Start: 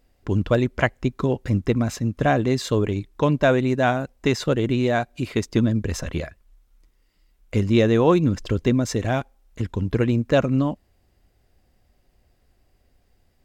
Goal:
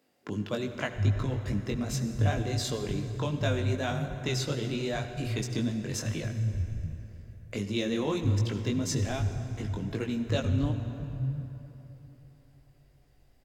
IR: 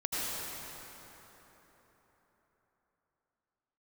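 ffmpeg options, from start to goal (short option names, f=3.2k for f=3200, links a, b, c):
-filter_complex "[0:a]acrossover=split=150|3000[a][b][c];[b]acompressor=threshold=-38dB:ratio=2[d];[a][d][c]amix=inputs=3:normalize=0,flanger=delay=19:depth=2.9:speed=2.6,acrossover=split=150[e][f];[e]adelay=690[g];[g][f]amix=inputs=2:normalize=0,asplit=2[h][i];[1:a]atrim=start_sample=2205,asetrate=52920,aresample=44100[j];[i][j]afir=irnorm=-1:irlink=0,volume=-12.5dB[k];[h][k]amix=inputs=2:normalize=0"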